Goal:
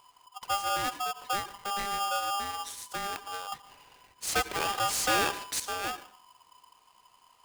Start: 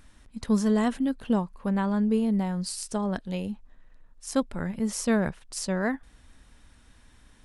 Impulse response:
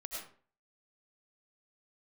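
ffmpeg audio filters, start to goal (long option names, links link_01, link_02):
-filter_complex "[0:a]asettb=1/sr,asplit=3[link_01][link_02][link_03];[link_01]atrim=end=3.524[link_04];[link_02]atrim=start=3.52:end=5.6,asetpts=PTS-STARTPTS,afade=type=in:duration=0.004:curve=qsin,afade=type=out:start_time=2.076:duration=0.004:curve=qsin,asplit=2[link_05][link_06];[link_06]highpass=frequency=720:poles=1,volume=26dB,asoftclip=type=tanh:threshold=-12dB[link_07];[link_05][link_07]amix=inputs=2:normalize=0,lowpass=frequency=6100:poles=1,volume=-6dB[link_08];[link_03]atrim=start=5.596[link_09];[link_04][link_08]acrossfade=duration=0.004:curve1=hsin:curve2=qsin[link_10];[link_10][link_09]acrossfade=duration=0.004:curve1=qsin:curve2=hsin,asplit=2[link_11][link_12];[1:a]atrim=start_sample=2205[link_13];[link_12][link_13]afir=irnorm=-1:irlink=0,volume=-10dB[link_14];[link_11][link_14]amix=inputs=2:normalize=0,aeval=exprs='val(0)*sgn(sin(2*PI*1000*n/s))':channel_layout=same,volume=-8.5dB"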